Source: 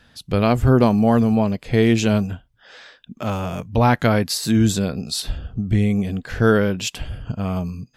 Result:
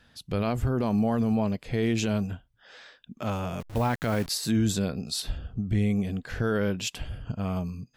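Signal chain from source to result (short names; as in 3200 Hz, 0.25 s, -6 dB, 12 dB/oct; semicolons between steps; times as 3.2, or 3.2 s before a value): 3.6–4.29 level-crossing sampler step -30.5 dBFS; limiter -11 dBFS, peak gain reduction 8 dB; gain -6 dB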